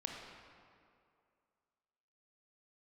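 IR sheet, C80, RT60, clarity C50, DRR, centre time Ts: 3.0 dB, 2.4 s, 1.5 dB, 0.0 dB, 87 ms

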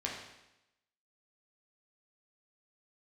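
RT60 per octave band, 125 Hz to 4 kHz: 0.90 s, 0.95 s, 0.90 s, 0.90 s, 0.90 s, 0.90 s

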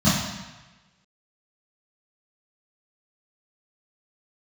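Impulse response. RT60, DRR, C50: 1.1 s, -13.5 dB, 0.5 dB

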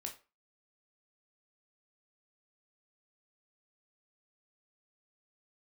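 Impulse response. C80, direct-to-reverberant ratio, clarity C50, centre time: 17.5 dB, 2.0 dB, 11.5 dB, 14 ms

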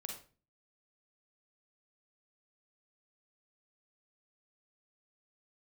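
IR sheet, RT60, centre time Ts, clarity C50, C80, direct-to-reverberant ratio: 0.40 s, 29 ms, 3.5 dB, 10.0 dB, 1.0 dB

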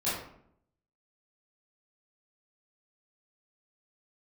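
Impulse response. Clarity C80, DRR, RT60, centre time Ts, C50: 5.5 dB, -12.0 dB, 0.65 s, 57 ms, 1.5 dB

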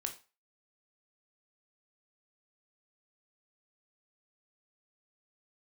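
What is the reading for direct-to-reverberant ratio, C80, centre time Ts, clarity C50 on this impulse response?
4.5 dB, 18.0 dB, 11 ms, 12.5 dB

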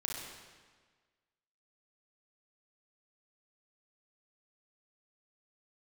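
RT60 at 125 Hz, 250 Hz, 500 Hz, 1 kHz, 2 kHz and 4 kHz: 1.5 s, 1.5 s, 1.5 s, 1.5 s, 1.4 s, 1.3 s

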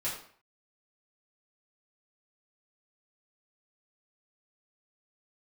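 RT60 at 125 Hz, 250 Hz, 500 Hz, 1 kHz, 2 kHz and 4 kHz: 0.55 s, 0.50 s, 0.50 s, 0.55 s, 0.50 s, 0.45 s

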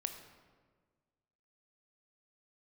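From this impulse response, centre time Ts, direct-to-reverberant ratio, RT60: 23 ms, 6.0 dB, 1.5 s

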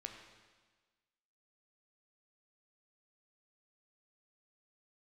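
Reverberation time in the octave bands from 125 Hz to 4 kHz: 1.3 s, 1.4 s, 1.4 s, 1.4 s, 1.4 s, 1.4 s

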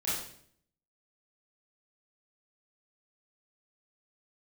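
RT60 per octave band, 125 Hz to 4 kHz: 0.85 s, 0.80 s, 0.65 s, 0.55 s, 0.55 s, 0.55 s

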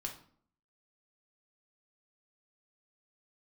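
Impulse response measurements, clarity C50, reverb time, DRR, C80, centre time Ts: 9.0 dB, 0.55 s, 0.5 dB, 13.5 dB, 18 ms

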